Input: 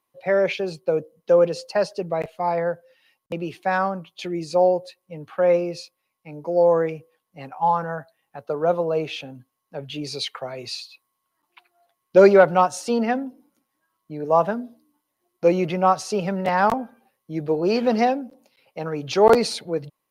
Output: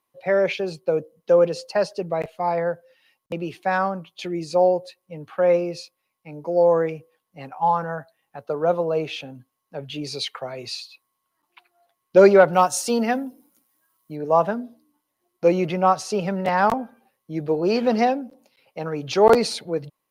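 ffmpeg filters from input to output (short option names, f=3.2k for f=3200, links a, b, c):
-filter_complex "[0:a]asettb=1/sr,asplit=3[a][b][c];[a]atrim=end=12.534[d];[b]atrim=start=12.53:end=14.16,asetpts=PTS-STARTPTS,afade=t=in:d=0.004:c=qsin,afade=t=out:st=1.626:d=0.004:c=qsin,aemphasis=mode=production:type=50kf[e];[c]atrim=start=14.156[f];[d][e]acrossfade=d=0.004:c1=hsin:c2=qsin[g];[g][f]acrossfade=d=0.004:c1=qsin:c2=hsin"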